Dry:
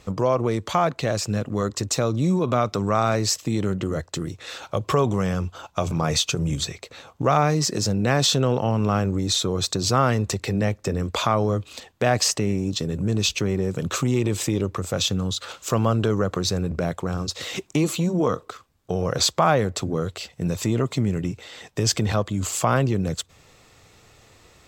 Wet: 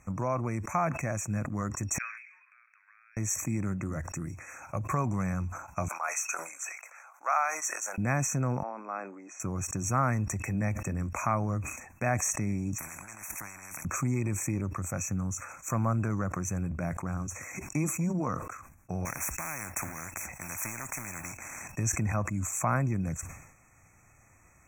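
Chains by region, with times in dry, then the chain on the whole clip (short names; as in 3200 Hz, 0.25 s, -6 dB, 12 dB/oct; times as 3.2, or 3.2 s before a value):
1.98–3.17 G.711 law mismatch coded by mu + elliptic band-pass 1600–3600 Hz, stop band 80 dB + compressor 16:1, threshold -49 dBFS
5.88–7.98 HPF 670 Hz 24 dB/oct + bell 1400 Hz +6 dB 0.28 oct
8.63–9.4 Bessel high-pass 490 Hz, order 6 + tape spacing loss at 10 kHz 24 dB
12.78–13.85 HPF 43 Hz + negative-ratio compressor -30 dBFS + spectral compressor 10:1
19.05–21.72 G.711 law mismatch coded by A + spectral compressor 4:1
whole clip: FFT band-reject 2600–5600 Hz; bell 440 Hz -14 dB 0.59 oct; sustainer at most 69 dB/s; gain -6 dB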